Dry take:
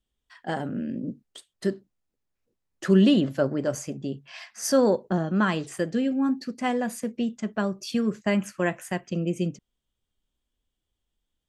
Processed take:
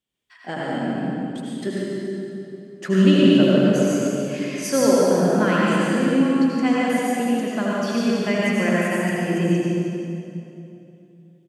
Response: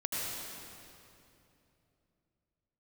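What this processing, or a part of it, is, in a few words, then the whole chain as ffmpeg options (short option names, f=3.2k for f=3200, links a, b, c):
PA in a hall: -filter_complex "[0:a]highpass=130,equalizer=f=2.3k:t=o:w=0.47:g=6,aecho=1:1:144:0.398[a];[1:a]atrim=start_sample=2205[b];[a][b]afir=irnorm=-1:irlink=0"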